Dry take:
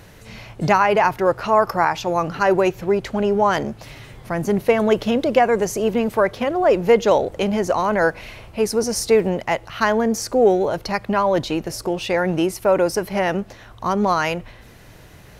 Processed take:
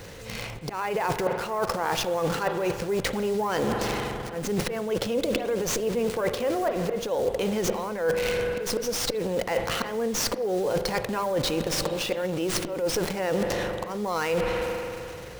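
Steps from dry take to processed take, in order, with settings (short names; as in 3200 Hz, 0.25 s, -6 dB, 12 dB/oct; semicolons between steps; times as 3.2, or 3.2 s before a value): in parallel at -4.5 dB: bit-crush 5-bit; on the sum: transient shaper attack -3 dB, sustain +9 dB; bell 500 Hz +11 dB 0.32 oct; auto swell 0.375 s; high shelf 4100 Hz +8 dB; notch 620 Hz, Q 12; spring tank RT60 2.4 s, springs 43 ms, chirp 40 ms, DRR 11 dB; reverse; compressor 12:1, threshold -23 dBFS, peak gain reduction 20 dB; reverse; running maximum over 3 samples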